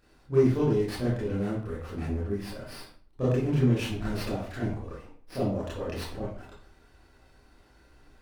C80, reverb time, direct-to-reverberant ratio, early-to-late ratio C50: 7.0 dB, 0.50 s, −9.5 dB, 2.0 dB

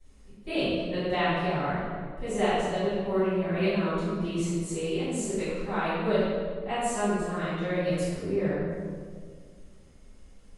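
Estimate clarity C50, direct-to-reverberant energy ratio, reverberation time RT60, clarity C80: −4.0 dB, −19.0 dB, 1.9 s, −1.0 dB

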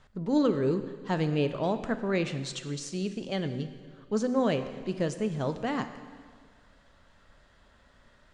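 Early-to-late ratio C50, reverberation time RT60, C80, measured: 10.5 dB, 1.7 s, 11.5 dB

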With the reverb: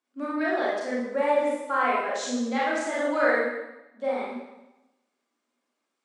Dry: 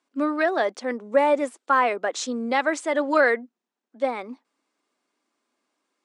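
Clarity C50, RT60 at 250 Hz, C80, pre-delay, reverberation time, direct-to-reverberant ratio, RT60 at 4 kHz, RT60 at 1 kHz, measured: −1.0 dB, 1.1 s, 2.5 dB, 26 ms, 0.95 s, −7.0 dB, 0.90 s, 1.0 s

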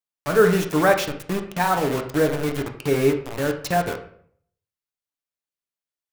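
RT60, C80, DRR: 0.60 s, 12.5 dB, 3.5 dB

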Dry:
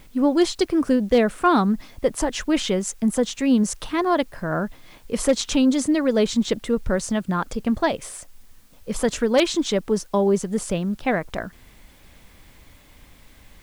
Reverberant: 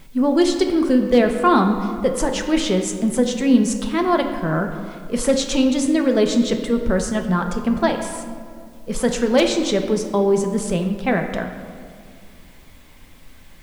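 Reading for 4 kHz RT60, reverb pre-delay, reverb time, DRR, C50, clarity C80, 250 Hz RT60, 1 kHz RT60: 1.2 s, 4 ms, 2.1 s, 4.0 dB, 6.5 dB, 8.0 dB, 2.6 s, 2.0 s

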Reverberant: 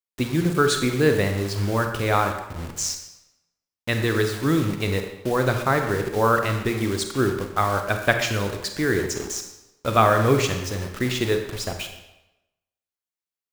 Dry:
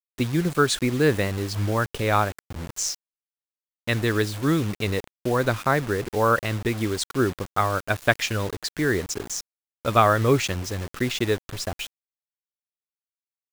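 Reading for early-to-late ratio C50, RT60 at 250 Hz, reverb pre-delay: 6.5 dB, 0.85 s, 29 ms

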